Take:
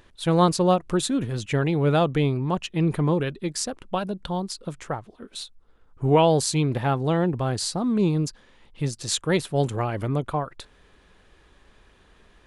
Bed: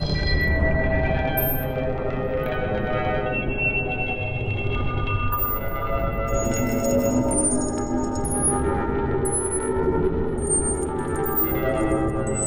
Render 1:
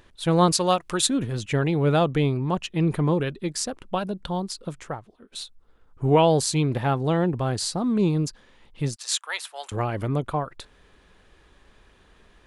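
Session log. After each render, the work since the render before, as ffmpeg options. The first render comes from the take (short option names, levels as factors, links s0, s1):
-filter_complex "[0:a]asettb=1/sr,asplit=3[s0][s1][s2];[s0]atrim=end=0.524[s3];[s1]atrim=start=0.52:end=1.07,asetpts=PTS-STARTPTS,afade=t=in:d=0.004:c=qsin,afade=t=out:st=0.546:d=0.004:c=qsin,tiltshelf=f=770:g=-7[s4];[s2]atrim=start=1.066[s5];[s3][s4]acrossfade=d=0.004:c1=hsin:c2=qsin[s6];[s6][s5]acrossfade=d=0.004:c1=qsin:c2=hsin,asettb=1/sr,asplit=3[s7][s8][s9];[s7]atrim=end=8.964[s10];[s8]atrim=start=8.96:end=9.72,asetpts=PTS-STARTPTS,afade=t=in:d=0.004:c=qsin,afade=t=out:st=0.756:d=0.004:c=qsin,highpass=f=870:w=0.5412,highpass=f=870:w=1.3066[s11];[s9]atrim=start=9.716[s12];[s10][s11]acrossfade=d=0.004:c1=hsin:c2=qsin[s13];[s13][s12]acrossfade=d=0.004:c1=qsin:c2=hsin,asplit=2[s14][s15];[s14]atrim=end=5.32,asetpts=PTS-STARTPTS,afade=t=out:st=4.68:d=0.64:silence=0.251189[s16];[s15]atrim=start=5.32,asetpts=PTS-STARTPTS,afade=t=in:d=0.004:c=hsin:silence=0.251189[s17];[s16][s17]concat=n=2:v=0:a=1"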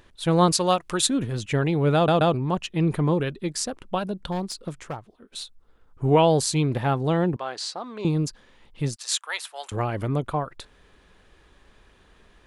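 -filter_complex "[0:a]asettb=1/sr,asplit=3[s0][s1][s2];[s0]atrim=end=4.324[s3];[s1]atrim=start=4.32:end=5.41,asetpts=PTS-STARTPTS,afade=t=in:d=0.004:c=qsin,afade=t=out:st=1.086:d=0.004:c=qsin,aeval=exprs='clip(val(0),-1,0.0422)':c=same[s4];[s2]atrim=start=5.406[s5];[s3][s4]acrossfade=d=0.004:c1=hsin:c2=qsin[s6];[s6][s5]acrossfade=d=0.004:c1=qsin:c2=hsin,asettb=1/sr,asplit=3[s7][s8][s9];[s7]atrim=end=7.364[s10];[s8]atrim=start=7.36:end=8.05,asetpts=PTS-STARTPTS,afade=t=in:d=0.004:c=qsin,afade=t=out:st=0.686:d=0.004:c=qsin,highpass=640,lowpass=5300[s11];[s9]atrim=start=8.046[s12];[s10][s11]acrossfade=d=0.004:c1=hsin:c2=qsin[s13];[s13][s12]acrossfade=d=0.004:c1=qsin:c2=hsin,asplit=4[s14][s15][s16][s17];[s14]atrim=end=2.082[s18];[s15]atrim=start=1.948:end=2.082[s19];[s16]atrim=start=1.948:end=2.082[s20];[s17]atrim=start=2.338[s21];[s18][s19]acrossfade=d=0.004:c1=hsin:c2=hsin[s22];[s22][s20]acrossfade=d=0.004:c1=hsin:c2=hsin[s23];[s23][s21]acrossfade=d=0.004:c1=hsin:c2=hsin"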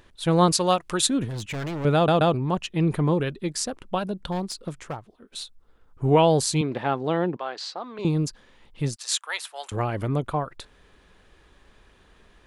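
-filter_complex "[0:a]asettb=1/sr,asplit=3[s0][s1][s2];[s0]atrim=end=1.284[s3];[s1]atrim=start=1.28:end=1.85,asetpts=PTS-STARTPTS,afade=t=in:d=0.004:c=qsin,afade=t=out:st=0.566:d=0.004:c=qsin,volume=26.6,asoftclip=hard,volume=0.0376[s4];[s2]atrim=start=1.846[s5];[s3][s4]acrossfade=d=0.004:c1=hsin:c2=qsin[s6];[s6][s5]acrossfade=d=0.004:c1=qsin:c2=hsin,asettb=1/sr,asplit=3[s7][s8][s9];[s7]atrim=end=6.614[s10];[s8]atrim=start=6.61:end=7.99,asetpts=PTS-STARTPTS,afade=t=in:d=0.004:c=qsin,afade=t=out:st=1.376:d=0.004:c=qsin,highpass=220,lowpass=4800[s11];[s9]atrim=start=7.986[s12];[s10][s11]acrossfade=d=0.004:c1=hsin:c2=qsin[s13];[s13][s12]acrossfade=d=0.004:c1=qsin:c2=hsin"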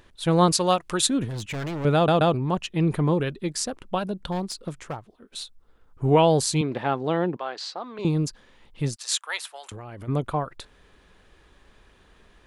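-filter_complex "[0:a]asplit=3[s0][s1][s2];[s0]afade=t=out:st=9.55:d=0.02[s3];[s1]acompressor=threshold=0.0178:ratio=12:attack=3.2:release=140:knee=1:detection=peak,afade=t=in:st=9.55:d=0.02,afade=t=out:st=10.07:d=0.02[s4];[s2]afade=t=in:st=10.07:d=0.02[s5];[s3][s4][s5]amix=inputs=3:normalize=0"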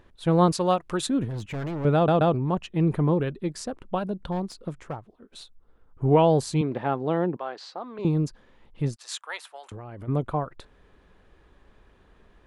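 -af "highshelf=f=2200:g=-11.5"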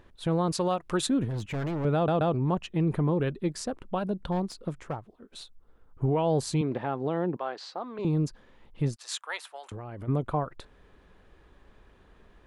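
-af "alimiter=limit=0.126:level=0:latency=1:release=126"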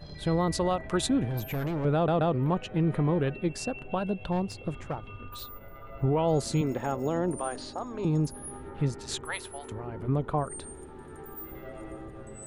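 -filter_complex "[1:a]volume=0.1[s0];[0:a][s0]amix=inputs=2:normalize=0"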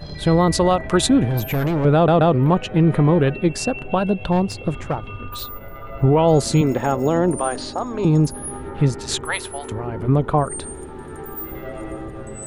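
-af "volume=3.35"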